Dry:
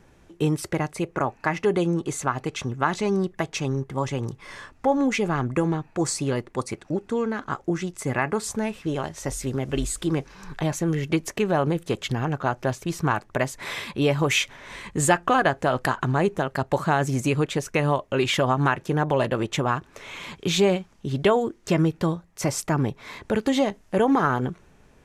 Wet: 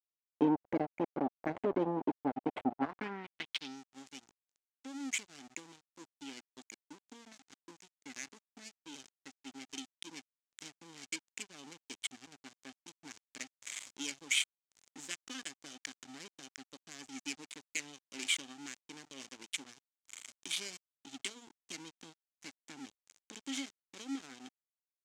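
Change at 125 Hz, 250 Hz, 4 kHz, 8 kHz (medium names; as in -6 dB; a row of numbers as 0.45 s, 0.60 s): -28.5 dB, -15.5 dB, -9.0 dB, -10.0 dB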